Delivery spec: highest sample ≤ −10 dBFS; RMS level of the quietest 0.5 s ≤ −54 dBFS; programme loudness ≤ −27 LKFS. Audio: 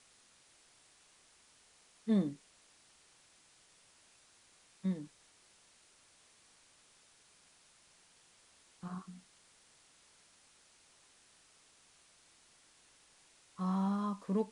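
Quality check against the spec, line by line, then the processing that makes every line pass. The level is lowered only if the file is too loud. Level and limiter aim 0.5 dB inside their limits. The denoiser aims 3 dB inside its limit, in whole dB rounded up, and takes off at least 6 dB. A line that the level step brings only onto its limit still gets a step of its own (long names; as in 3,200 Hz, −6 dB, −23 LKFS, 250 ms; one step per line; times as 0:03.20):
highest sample −21.0 dBFS: in spec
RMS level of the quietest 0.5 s −66 dBFS: in spec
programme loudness −37.0 LKFS: in spec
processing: no processing needed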